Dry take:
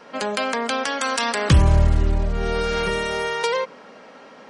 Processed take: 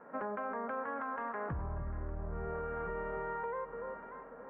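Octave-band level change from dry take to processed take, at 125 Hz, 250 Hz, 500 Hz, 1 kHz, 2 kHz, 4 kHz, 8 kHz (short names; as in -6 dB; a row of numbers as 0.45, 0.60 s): -22.5 dB, -17.5 dB, -14.5 dB, -13.0 dB, -18.5 dB, under -40 dB, under -40 dB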